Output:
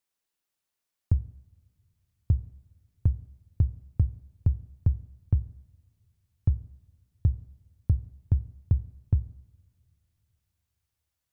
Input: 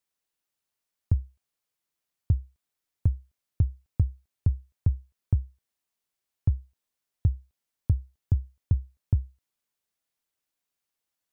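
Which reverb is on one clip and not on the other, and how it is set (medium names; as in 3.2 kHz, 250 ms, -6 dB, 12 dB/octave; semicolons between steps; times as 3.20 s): two-slope reverb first 0.85 s, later 3.4 s, from -20 dB, DRR 15 dB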